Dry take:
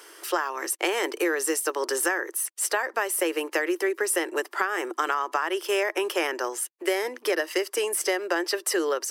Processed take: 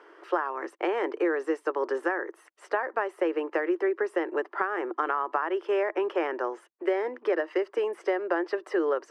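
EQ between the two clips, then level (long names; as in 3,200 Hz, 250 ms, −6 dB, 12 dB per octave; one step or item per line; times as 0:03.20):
low-pass filter 1,400 Hz 12 dB per octave
0.0 dB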